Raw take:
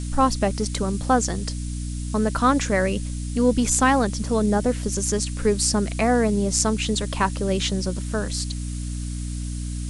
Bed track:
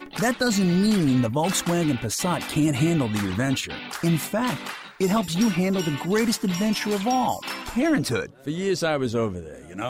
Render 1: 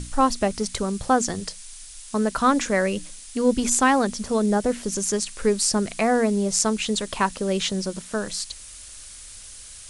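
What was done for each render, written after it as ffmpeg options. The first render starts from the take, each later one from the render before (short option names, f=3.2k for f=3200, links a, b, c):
-af "bandreject=f=60:t=h:w=6,bandreject=f=120:t=h:w=6,bandreject=f=180:t=h:w=6,bandreject=f=240:t=h:w=6,bandreject=f=300:t=h:w=6"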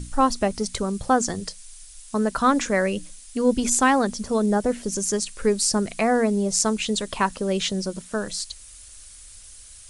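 -af "afftdn=nr=6:nf=-42"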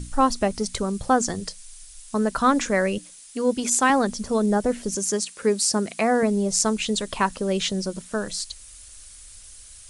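-filter_complex "[0:a]asettb=1/sr,asplit=3[a][b][c];[a]atrim=end=2.984[d];[b]atrim=start=2.98:end=3.9,asetpts=PTS-STARTPTS,afade=t=in:d=0.004:c=qsin,afade=t=out:st=0.916:d=0.004:c=qsin,highpass=f=290:p=1[e];[c]atrim=start=3.896[f];[d][e]acrossfade=d=0.004:c1=hsin:c2=qsin[g];[g][f]acrossfade=d=0.004:c1=qsin:c2=hsin,asettb=1/sr,asplit=3[h][i][j];[h]atrim=end=4.954[k];[i]atrim=start=4.95:end=6.23,asetpts=PTS-STARTPTS,afade=t=in:d=0.004:c=qsin,afade=t=out:st=1.276:d=0.004:c=qsin,highpass=160[l];[j]atrim=start=6.226[m];[k][l]acrossfade=d=0.004:c1=hsin:c2=qsin[n];[n][m]acrossfade=d=0.004:c1=qsin:c2=hsin"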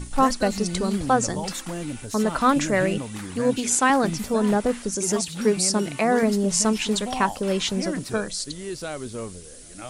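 -filter_complex "[1:a]volume=-9dB[a];[0:a][a]amix=inputs=2:normalize=0"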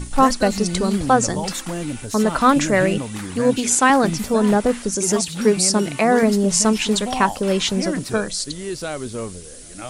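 -af "volume=4.5dB,alimiter=limit=-2dB:level=0:latency=1"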